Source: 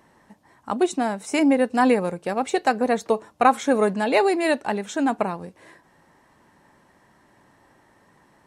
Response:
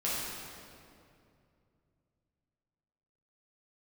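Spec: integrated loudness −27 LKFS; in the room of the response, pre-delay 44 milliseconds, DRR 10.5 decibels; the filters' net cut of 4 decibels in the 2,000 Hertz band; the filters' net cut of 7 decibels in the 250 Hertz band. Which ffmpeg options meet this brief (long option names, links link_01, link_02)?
-filter_complex "[0:a]equalizer=frequency=250:width_type=o:gain=-8.5,equalizer=frequency=2000:width_type=o:gain=-5,asplit=2[link_01][link_02];[1:a]atrim=start_sample=2205,adelay=44[link_03];[link_02][link_03]afir=irnorm=-1:irlink=0,volume=-18dB[link_04];[link_01][link_04]amix=inputs=2:normalize=0,volume=-2.5dB"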